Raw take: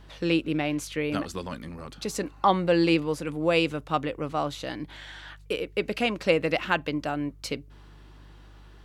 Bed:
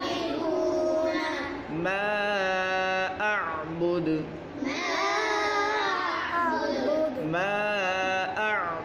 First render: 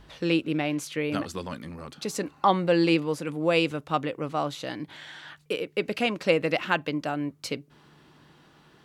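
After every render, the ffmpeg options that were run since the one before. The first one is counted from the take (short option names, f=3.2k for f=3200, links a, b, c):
-af "bandreject=f=50:t=h:w=4,bandreject=f=100:t=h:w=4"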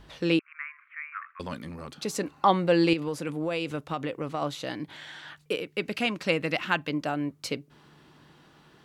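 -filter_complex "[0:a]asettb=1/sr,asplit=3[a][b][c];[a]atrim=end=0.394[d];[b]atrim=start=0.39:end=1.4,asetpts=PTS-STARTPTS,afade=t=in:d=0.004:c=qsin,afade=t=out:st=1.006:d=0.004:c=qsin,asuperpass=centerf=1600:order=12:qfactor=1.3[e];[c]atrim=start=1.396[f];[d][e]acrossfade=d=0.004:c1=hsin:c2=qsin[g];[g][f]acrossfade=d=0.004:c1=qsin:c2=hsin,asettb=1/sr,asplit=3[h][i][j];[h]atrim=end=2.934[k];[i]atrim=start=2.93:end=4.42,asetpts=PTS-STARTPTS,afade=t=in:d=0.004:c=qsin,afade=t=out:st=1.486:d=0.004:c=qsin,acompressor=threshold=-25dB:ratio=6:attack=3.2:release=140:knee=1:detection=peak[l];[j]atrim=start=4.416[m];[k][l]acrossfade=d=0.004:c1=hsin:c2=qsin[n];[n][m]acrossfade=d=0.004:c1=qsin:c2=hsin,asettb=1/sr,asplit=3[o][p][q];[o]atrim=end=5.604[r];[p]atrim=start=5.6:end=6.9,asetpts=PTS-STARTPTS,afade=t=in:d=0.004:c=qsin,afade=t=out:st=1.296:d=0.004:c=qsin,equalizer=f=510:t=o:w=1.2:g=-5.5[s];[q]atrim=start=6.896[t];[r][s]acrossfade=d=0.004:c1=hsin:c2=qsin[u];[u][t]acrossfade=d=0.004:c1=qsin:c2=hsin"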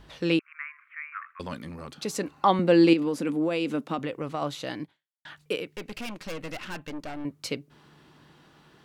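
-filter_complex "[0:a]asettb=1/sr,asplit=3[a][b][c];[a]atrim=end=2.594[d];[b]atrim=start=2.59:end=3.99,asetpts=PTS-STARTPTS,afade=t=in:d=0.004:c=qsin,afade=t=out:st=1.396:d=0.004:c=qsin,highpass=f=230:t=q:w=4.9[e];[c]atrim=start=3.986[f];[d][e]acrossfade=d=0.004:c1=hsin:c2=qsin[g];[g][f]acrossfade=d=0.004:c1=qsin:c2=hsin,asettb=1/sr,asplit=3[h][i][j];[h]atrim=end=5.764[k];[i]atrim=start=5.76:end=7.25,asetpts=PTS-STARTPTS,afade=t=in:d=0.004:c=qsin,afade=t=out:st=1.486:d=0.004:c=qsin,aeval=exprs='(tanh(44.7*val(0)+0.75)-tanh(0.75))/44.7':c=same[l];[j]atrim=start=7.246[m];[k][l]acrossfade=d=0.004:c1=hsin:c2=qsin[n];[n][m]acrossfade=d=0.004:c1=qsin:c2=hsin,asplit=2[o][p];[o]atrim=end=5.25,asetpts=PTS-STARTPTS,afade=t=out:st=4.83:d=0.42:c=exp[q];[p]atrim=start=5.25,asetpts=PTS-STARTPTS,afade=t=in:d=0.004:c=hsin[r];[q][r]concat=n=2:v=0:a=1"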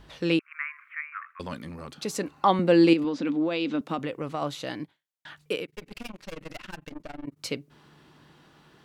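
-filter_complex "[0:a]asettb=1/sr,asplit=3[a][b][c];[a]atrim=end=3.044[d];[b]atrim=start=3.04:end=3.81,asetpts=PTS-STARTPTS,afade=t=in:d=0.004:c=qsin,afade=t=out:st=0.766:d=0.004:c=qsin,highpass=170,equalizer=f=270:t=q:w=4:g=4,equalizer=f=440:t=q:w=4:g=-5,equalizer=f=3.7k:t=q:w=4:g=6,lowpass=f=5.6k:w=0.5412,lowpass=f=5.6k:w=1.3066[e];[c]atrim=start=3.806[f];[d][e]acrossfade=d=0.004:c1=hsin:c2=qsin[g];[g][f]acrossfade=d=0.004:c1=qsin:c2=hsin,asettb=1/sr,asplit=3[h][i][j];[h]atrim=end=5.654[k];[i]atrim=start=5.65:end=7.39,asetpts=PTS-STARTPTS,afade=t=in:d=0.004:c=qsin,afade=t=out:st=1.736:d=0.004:c=qsin,tremolo=f=22:d=0.947[l];[j]atrim=start=7.386[m];[k][l]acrossfade=d=0.004:c1=hsin:c2=qsin[n];[n][m]acrossfade=d=0.004:c1=qsin:c2=hsin,asplit=3[o][p][q];[o]atrim=end=0.512[r];[p]atrim=start=0.508:end=1.012,asetpts=PTS-STARTPTS,volume=4.5dB[s];[q]atrim=start=1.008[t];[r][s]acrossfade=d=0.004:c1=hsin:c2=hsin[u];[u][t]acrossfade=d=0.004:c1=hsin:c2=hsin"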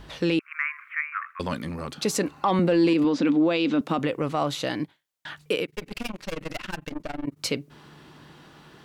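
-af "acontrast=70,alimiter=limit=-14dB:level=0:latency=1:release=46"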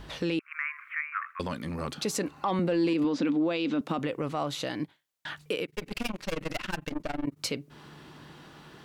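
-af "alimiter=limit=-20dB:level=0:latency=1:release=286"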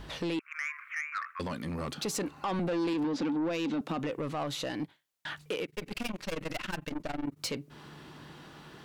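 -af "asoftclip=type=tanh:threshold=-27dB"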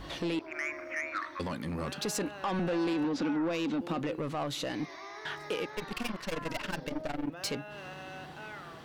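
-filter_complex "[1:a]volume=-18.5dB[a];[0:a][a]amix=inputs=2:normalize=0"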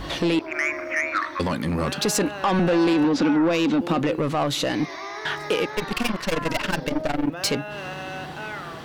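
-af "volume=11dB"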